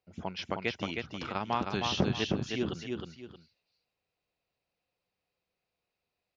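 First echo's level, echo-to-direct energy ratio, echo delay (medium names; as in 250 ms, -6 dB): -4.0 dB, -3.5 dB, 313 ms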